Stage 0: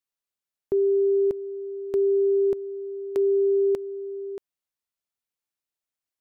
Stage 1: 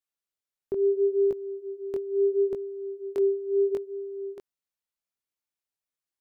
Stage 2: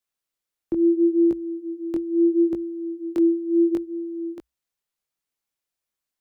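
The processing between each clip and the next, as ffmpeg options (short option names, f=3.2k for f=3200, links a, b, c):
-af "flanger=delay=17:depth=7:speed=0.73"
-af "afreqshift=-59,volume=5dB"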